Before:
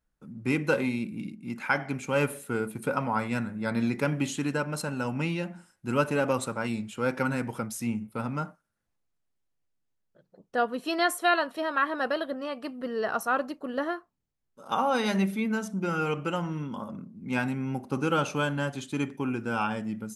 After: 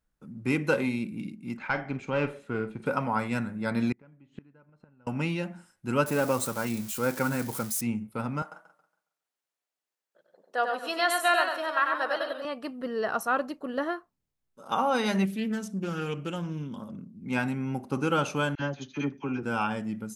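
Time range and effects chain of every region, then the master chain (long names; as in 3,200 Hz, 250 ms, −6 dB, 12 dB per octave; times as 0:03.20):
0:01.57–0:02.86: tube saturation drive 17 dB, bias 0.4 + high-frequency loss of the air 160 metres + double-tracking delay 45 ms −12 dB
0:03.92–0:05.07: low-pass filter 2,100 Hz + low-shelf EQ 140 Hz +10 dB + gate with flip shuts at −23 dBFS, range −31 dB
0:06.06–0:07.81: spike at every zero crossing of −28 dBFS + parametric band 3,000 Hz −4 dB 0.75 octaves
0:08.42–0:12.45: high-pass filter 530 Hz + single-tap delay 95 ms −4.5 dB + feedback echo with a swinging delay time 138 ms, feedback 32%, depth 111 cents, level −12 dB
0:15.25–0:17.25: parametric band 1,000 Hz −9 dB 2.1 octaves + highs frequency-modulated by the lows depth 0.22 ms
0:18.55–0:19.43: linear-phase brick-wall low-pass 6,800 Hz + all-pass dispersion lows, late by 46 ms, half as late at 970 Hz + expander for the loud parts, over −39 dBFS
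whole clip: no processing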